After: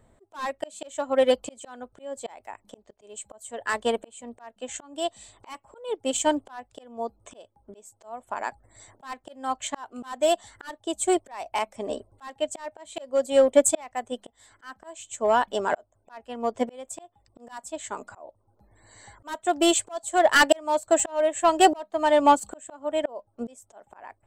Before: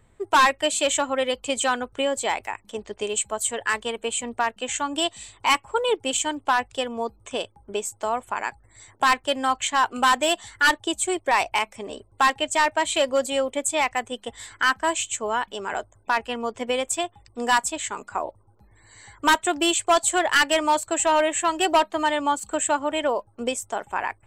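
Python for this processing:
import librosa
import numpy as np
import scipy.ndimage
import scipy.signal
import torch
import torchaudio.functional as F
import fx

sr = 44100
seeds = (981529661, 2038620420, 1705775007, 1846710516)

p1 = fx.graphic_eq_15(x, sr, hz=(250, 630, 2500), db=(5, 9, -5))
p2 = fx.auto_swell(p1, sr, attack_ms=717.0)
p3 = np.clip(10.0 ** (20.5 / 20.0) * p2, -1.0, 1.0) / 10.0 ** (20.5 / 20.0)
p4 = p2 + (p3 * 10.0 ** (-7.0 / 20.0))
p5 = fx.upward_expand(p4, sr, threshold_db=-33.0, expansion=1.5)
y = p5 * 10.0 ** (3.5 / 20.0)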